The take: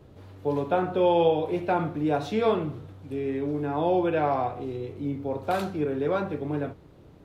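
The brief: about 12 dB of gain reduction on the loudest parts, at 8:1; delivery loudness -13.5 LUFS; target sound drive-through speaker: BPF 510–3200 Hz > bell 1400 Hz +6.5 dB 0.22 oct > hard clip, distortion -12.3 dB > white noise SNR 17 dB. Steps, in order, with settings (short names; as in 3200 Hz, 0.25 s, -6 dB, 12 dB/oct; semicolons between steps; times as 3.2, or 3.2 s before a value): compressor 8:1, threshold -30 dBFS; BPF 510–3200 Hz; bell 1400 Hz +6.5 dB 0.22 oct; hard clip -33.5 dBFS; white noise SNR 17 dB; gain +26.5 dB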